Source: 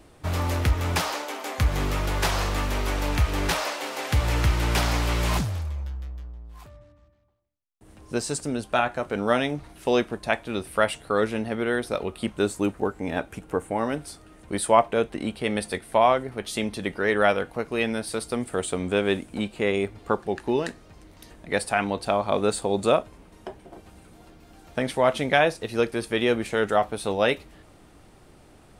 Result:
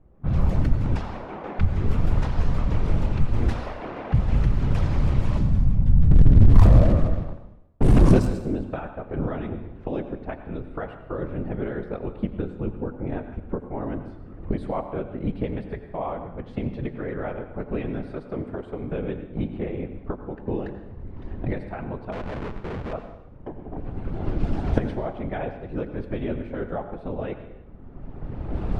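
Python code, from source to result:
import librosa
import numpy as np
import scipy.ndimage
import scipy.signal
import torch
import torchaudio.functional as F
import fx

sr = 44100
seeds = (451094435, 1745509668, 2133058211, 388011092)

y = fx.recorder_agc(x, sr, target_db=-10.0, rise_db_per_s=22.0, max_gain_db=30)
y = fx.highpass(y, sr, hz=220.0, slope=12, at=(18.08, 18.92))
y = fx.whisperise(y, sr, seeds[0])
y = fx.tilt_eq(y, sr, slope=-3.5)
y = fx.leveller(y, sr, passes=3, at=(6.11, 8.27))
y = fx.schmitt(y, sr, flips_db=-21.5, at=(22.12, 22.93))
y = fx.env_lowpass(y, sr, base_hz=1600.0, full_db=0.5)
y = fx.rev_plate(y, sr, seeds[1], rt60_s=0.88, hf_ratio=0.95, predelay_ms=75, drr_db=9.0)
y = y * 10.0 ** (-14.0 / 20.0)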